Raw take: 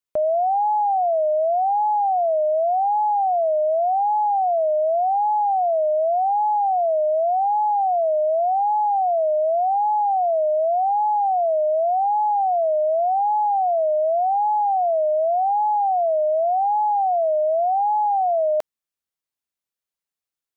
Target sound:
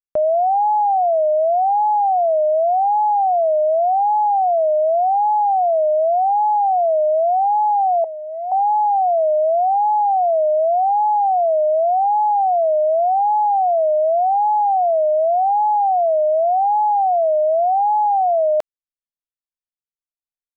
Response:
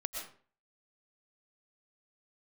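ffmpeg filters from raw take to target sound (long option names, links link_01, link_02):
-filter_complex "[0:a]asettb=1/sr,asplit=3[link_01][link_02][link_03];[link_01]atrim=end=8.044[link_04];[link_02]atrim=start=8.04:end=8.52,asetpts=PTS-STARTPTS,afade=type=in:duration=0.004:curve=qsin,afade=type=out:start_time=0.476:duration=0.004:curve=qsin,highpass=frequency=880:width=0.5412,highpass=frequency=880:width=1.3066[link_05];[link_03]atrim=start=8.516[link_06];[link_04][link_05]acrossfade=duration=0.004:curve1=hsin:curve2=qsin[link_07];[link_07][link_06]acrossfade=duration=0.004:curve1=qsin:curve2=hsin,anlmdn=25.1,volume=3.5dB"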